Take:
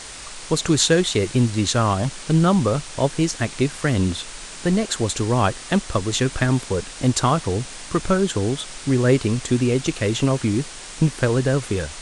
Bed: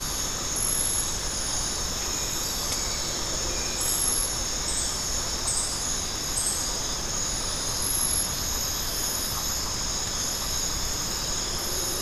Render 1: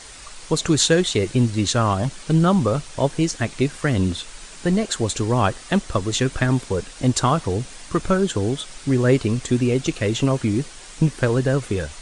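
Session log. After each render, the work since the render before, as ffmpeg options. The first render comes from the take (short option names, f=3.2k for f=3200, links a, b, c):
-af "afftdn=nr=6:nf=-37"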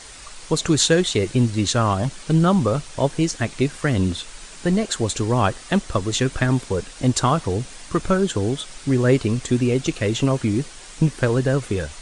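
-af anull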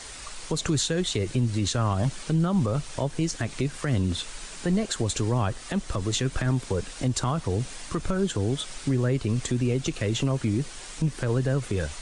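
-filter_complex "[0:a]acrossover=split=150[a][b];[b]acompressor=threshold=-25dB:ratio=2.5[c];[a][c]amix=inputs=2:normalize=0,alimiter=limit=-16dB:level=0:latency=1:release=61"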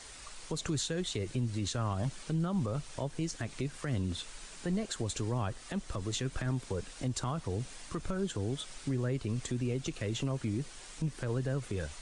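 -af "volume=-8.5dB"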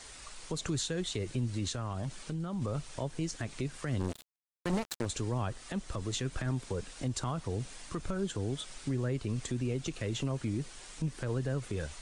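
-filter_complex "[0:a]asettb=1/sr,asplit=3[a][b][c];[a]atrim=end=1.744[d];[b]atrim=start=1.74:end=2.62,asetpts=PTS-STARTPTS,afade=t=in:d=0.004:c=qsin,afade=t=out:st=0.876:d=0.004:c=qsin,acompressor=threshold=-32dB:ratio=6:attack=3.2:release=140:knee=1:detection=peak[e];[c]atrim=start=2.616[f];[d][e]acrossfade=d=0.004:c1=hsin:c2=qsin[g];[g][f]acrossfade=d=0.004:c1=qsin:c2=hsin,asplit=3[h][i][j];[h]afade=t=out:st=3.99:d=0.02[k];[i]acrusher=bits=4:mix=0:aa=0.5,afade=t=in:st=3.99:d=0.02,afade=t=out:st=5.05:d=0.02[l];[j]afade=t=in:st=5.05:d=0.02[m];[k][l][m]amix=inputs=3:normalize=0"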